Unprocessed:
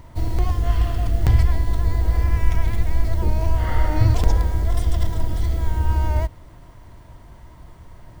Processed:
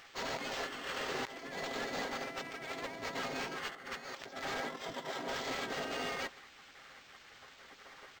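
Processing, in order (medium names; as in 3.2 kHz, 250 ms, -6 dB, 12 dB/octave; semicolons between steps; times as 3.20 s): spectral gate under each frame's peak -30 dB weak; bass shelf 180 Hz -6.5 dB; comb 7.5 ms, depth 47%; compressor with a negative ratio -42 dBFS, ratio -0.5; 4.60–5.28 s: distance through air 56 m; delay 150 ms -23 dB; decimation joined by straight lines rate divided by 4×; trim +3 dB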